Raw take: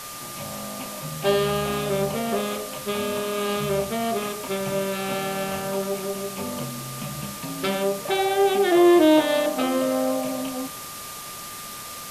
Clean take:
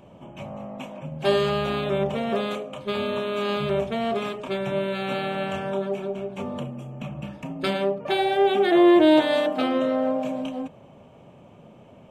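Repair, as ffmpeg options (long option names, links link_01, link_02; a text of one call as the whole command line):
ffmpeg -i in.wav -af "bandreject=frequency=1200:width=30,afwtdn=0.016" out.wav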